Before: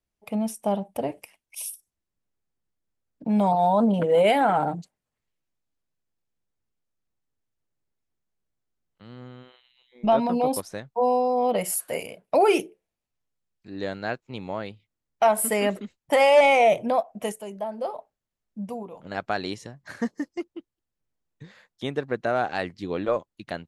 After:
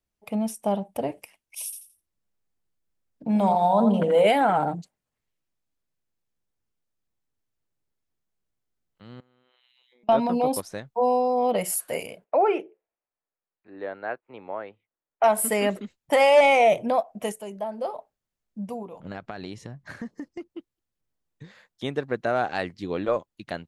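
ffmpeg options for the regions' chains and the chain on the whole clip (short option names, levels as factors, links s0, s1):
-filter_complex "[0:a]asettb=1/sr,asplit=3[s0][s1][s2];[s0]atrim=end=1.644[s3];[s1]atrim=start=1.64:end=4.27,asetpts=PTS-STARTPTS,afade=t=in:d=0.004:c=qsin,afade=t=out:st=2.626:d=0.004:c=qsin,bandreject=f=60:t=h:w=6,bandreject=f=120:t=h:w=6,bandreject=f=180:t=h:w=6,bandreject=f=240:t=h:w=6,bandreject=f=300:t=h:w=6,bandreject=f=360:t=h:w=6,bandreject=f=420:t=h:w=6,aecho=1:1:84|168|252:0.422|0.105|0.0264,atrim=end_sample=115983[s4];[s2]atrim=start=4.266[s5];[s3][s4]acrossfade=d=0.004:c1=hsin:c2=qsin[s6];[s6][s5]acrossfade=d=0.004:c1=qsin:c2=hsin,asettb=1/sr,asplit=3[s7][s8][s9];[s7]atrim=end=9.204[s10];[s8]atrim=start=9.2:end=10.09,asetpts=PTS-STARTPTS,afade=t=in:d=0.004:c=qsin,afade=t=out:st=0.886:d=0.004:c=qsin,highpass=f=360:p=1,acompressor=threshold=0.00126:ratio=20:attack=3.2:release=140:knee=1:detection=peak[s11];[s9]atrim=start=10.086[s12];[s10][s11]acrossfade=d=0.004:c1=hsin:c2=qsin[s13];[s13][s12]acrossfade=d=0.004:c1=qsin:c2=hsin,asettb=1/sr,asplit=3[s14][s15][s16];[s14]atrim=end=12.244[s17];[s15]atrim=start=12.24:end=15.24,asetpts=PTS-STARTPTS,afade=t=in:d=0.004:c=qsin,afade=t=out:st=2.996:d=0.004:c=qsin,lowpass=f=3300:p=1,acrossover=split=350 2400:gain=0.126 1 0.0794[s18][s19][s20];[s18][s19][s20]amix=inputs=3:normalize=0[s21];[s16]atrim=start=15.236[s22];[s17][s21]acrossfade=d=0.004:c1=hsin:c2=qsin[s23];[s23][s22]acrossfade=d=0.004:c1=qsin:c2=hsin,asettb=1/sr,asplit=3[s24][s25][s26];[s24]atrim=end=19.004[s27];[s25]atrim=start=19:end=20.5,asetpts=PTS-STARTPTS,afade=t=in:d=0.004:c=qsin,afade=t=out:st=1.496:d=0.004:c=qsin,bass=f=250:g=6,treble=f=4000:g=-5,acompressor=threshold=0.0282:ratio=8:attack=3.2:release=140:knee=1:detection=peak[s28];[s26]atrim=start=20.496[s29];[s27][s28]acrossfade=d=0.004:c1=hsin:c2=qsin[s30];[s30][s29]acrossfade=d=0.004:c1=qsin:c2=hsin"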